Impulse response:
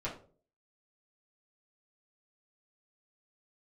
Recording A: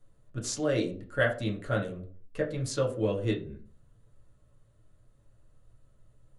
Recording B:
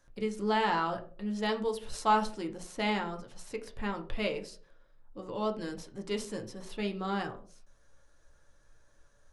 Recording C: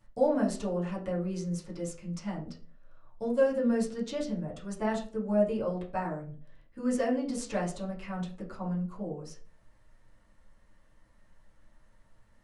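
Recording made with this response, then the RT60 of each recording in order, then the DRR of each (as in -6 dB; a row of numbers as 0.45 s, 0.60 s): C; 0.45 s, 0.45 s, 0.45 s; -2.0 dB, 2.5 dB, -8.0 dB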